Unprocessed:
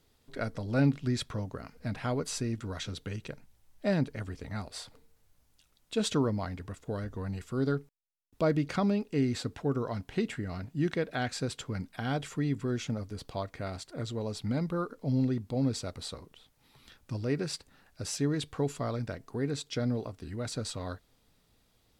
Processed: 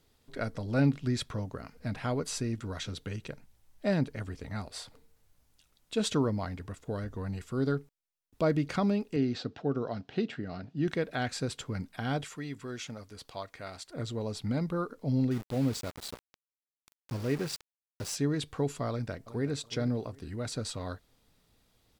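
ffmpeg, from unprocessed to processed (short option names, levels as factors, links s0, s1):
-filter_complex "[0:a]asettb=1/sr,asplit=3[s0][s1][s2];[s0]atrim=end=9.164[s3];[s1]atrim=start=9.16:end=10.88,asetpts=PTS-STARTPTS,afade=t=in:d=0.004:c=qsin,afade=t=out:st=1.716:d=0.004:c=qsin,highpass=130,equalizer=f=710:t=q:w=4:g=3,equalizer=f=1000:t=q:w=4:g=-6,equalizer=f=2100:t=q:w=4:g=-6,lowpass=f=5200:w=0.5412,lowpass=f=5200:w=1.3066[s4];[s2]atrim=start=10.876[s5];[s3][s4]acrossfade=d=0.004:c1=hsin:c2=qsin[s6];[s6][s5]acrossfade=d=0.004:c1=qsin:c2=hsin,asettb=1/sr,asplit=3[s7][s8][s9];[s7]atrim=end=12.244[s10];[s8]atrim=start=12.24:end=13.9,asetpts=PTS-STARTPTS,afade=t=in:d=0.004:c=qsin,afade=t=out:st=1.656:d=0.004:c=qsin,lowshelf=f=490:g=-11.5[s11];[s9]atrim=start=13.896[s12];[s10][s11]acrossfade=d=0.004:c1=hsin:c2=qsin[s13];[s13][s12]acrossfade=d=0.004:c1=qsin:c2=hsin,asettb=1/sr,asplit=3[s14][s15][s16];[s14]atrim=end=15.314[s17];[s15]atrim=start=15.31:end=18.15,asetpts=PTS-STARTPTS,afade=t=in:d=0.004:c=qsin,afade=t=out:st=2.836:d=0.004:c=qsin,aeval=exprs='val(0)*gte(abs(val(0)),0.0112)':c=same[s18];[s16]atrim=start=18.146[s19];[s17][s18]acrossfade=d=0.004:c1=hsin:c2=qsin[s20];[s20][s19]acrossfade=d=0.004:c1=qsin:c2=hsin,asplit=2[s21][s22];[s22]afade=t=in:st=18.89:d=0.01,afade=t=out:st=19.51:d=0.01,aecho=0:1:370|740|1110:0.177828|0.044457|0.0111142[s23];[s21][s23]amix=inputs=2:normalize=0"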